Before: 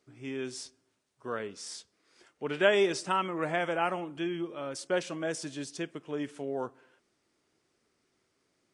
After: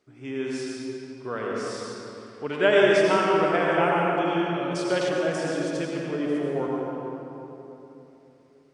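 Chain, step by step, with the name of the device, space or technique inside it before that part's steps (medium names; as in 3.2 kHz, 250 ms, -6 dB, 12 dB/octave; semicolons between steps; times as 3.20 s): swimming-pool hall (reverberation RT60 3.2 s, pre-delay 74 ms, DRR -3.5 dB; treble shelf 5.1 kHz -8 dB); 4.27–5.09 s: peaking EQ 4.1 kHz +5 dB 1.6 oct; trim +3 dB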